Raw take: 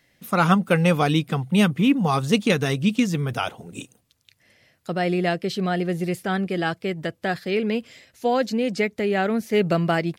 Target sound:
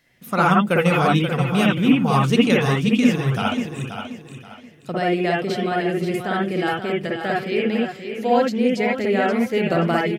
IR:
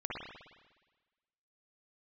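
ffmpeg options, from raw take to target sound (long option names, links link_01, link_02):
-filter_complex "[0:a]aecho=1:1:530|1060|1590|2120:0.376|0.117|0.0361|0.0112[link_01];[1:a]atrim=start_sample=2205,atrim=end_sample=3969[link_02];[link_01][link_02]afir=irnorm=-1:irlink=0,volume=2dB"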